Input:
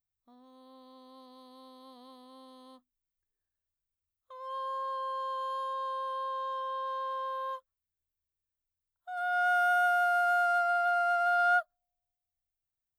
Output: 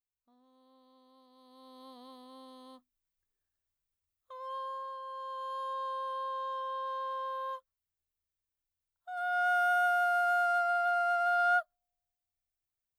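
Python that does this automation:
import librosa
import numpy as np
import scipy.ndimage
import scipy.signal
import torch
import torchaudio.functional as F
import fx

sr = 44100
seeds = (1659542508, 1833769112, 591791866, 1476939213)

y = fx.gain(x, sr, db=fx.line((1.3, -9.5), (1.81, 1.0), (4.36, 1.0), (5.02, -8.0), (5.72, -1.5)))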